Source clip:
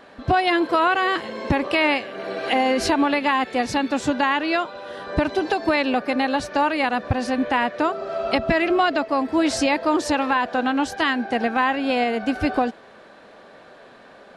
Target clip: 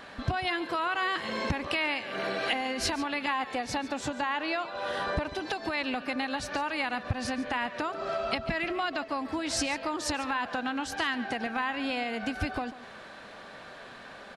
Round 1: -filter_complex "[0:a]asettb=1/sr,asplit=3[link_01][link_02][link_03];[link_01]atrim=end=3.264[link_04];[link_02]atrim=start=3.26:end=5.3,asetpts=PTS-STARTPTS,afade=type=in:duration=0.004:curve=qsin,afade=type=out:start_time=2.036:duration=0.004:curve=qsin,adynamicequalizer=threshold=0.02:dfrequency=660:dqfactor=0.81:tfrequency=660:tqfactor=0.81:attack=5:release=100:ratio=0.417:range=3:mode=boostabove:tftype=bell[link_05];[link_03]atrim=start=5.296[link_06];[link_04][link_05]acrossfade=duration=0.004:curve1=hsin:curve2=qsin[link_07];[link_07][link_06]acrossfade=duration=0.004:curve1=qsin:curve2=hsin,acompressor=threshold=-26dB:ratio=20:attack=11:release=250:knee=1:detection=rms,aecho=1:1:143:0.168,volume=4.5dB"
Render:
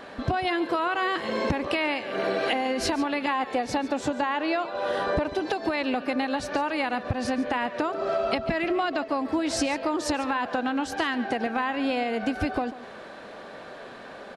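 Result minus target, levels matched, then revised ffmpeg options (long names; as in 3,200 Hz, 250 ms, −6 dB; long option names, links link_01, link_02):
500 Hz band +3.0 dB
-filter_complex "[0:a]asettb=1/sr,asplit=3[link_01][link_02][link_03];[link_01]atrim=end=3.264[link_04];[link_02]atrim=start=3.26:end=5.3,asetpts=PTS-STARTPTS,afade=type=in:duration=0.004:curve=qsin,afade=type=out:start_time=2.036:duration=0.004:curve=qsin,adynamicequalizer=threshold=0.02:dfrequency=660:dqfactor=0.81:tfrequency=660:tqfactor=0.81:attack=5:release=100:ratio=0.417:range=3:mode=boostabove:tftype=bell[link_05];[link_03]atrim=start=5.296[link_06];[link_04][link_05]acrossfade=duration=0.004:curve1=hsin:curve2=qsin[link_07];[link_07][link_06]acrossfade=duration=0.004:curve1=qsin:curve2=hsin,acompressor=threshold=-26dB:ratio=20:attack=11:release=250:knee=1:detection=rms,equalizer=frequency=420:width_type=o:width=2.1:gain=-8.5,aecho=1:1:143:0.168,volume=4.5dB"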